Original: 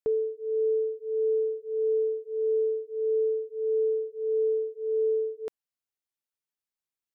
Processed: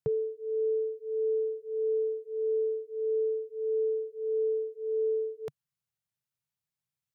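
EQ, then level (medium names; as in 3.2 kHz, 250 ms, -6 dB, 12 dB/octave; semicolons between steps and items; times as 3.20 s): high-pass 92 Hz; resonant low shelf 200 Hz +11.5 dB, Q 3; 0.0 dB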